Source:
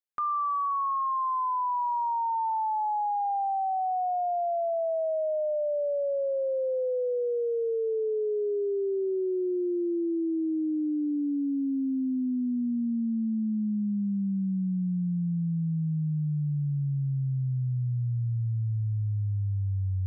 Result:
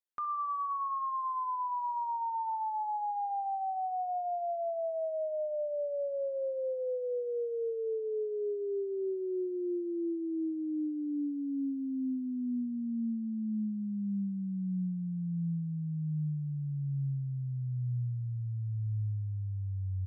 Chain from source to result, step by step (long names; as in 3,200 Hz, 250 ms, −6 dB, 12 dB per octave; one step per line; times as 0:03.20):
repeating echo 65 ms, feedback 41%, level −15 dB
level −6 dB